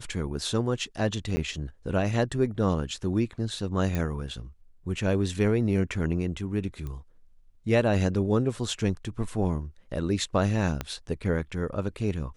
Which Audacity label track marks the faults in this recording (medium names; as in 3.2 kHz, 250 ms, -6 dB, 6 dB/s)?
1.360000	1.370000	dropout 10 ms
3.950000	3.950000	pop -16 dBFS
6.870000	6.870000	pop -25 dBFS
10.810000	10.810000	pop -15 dBFS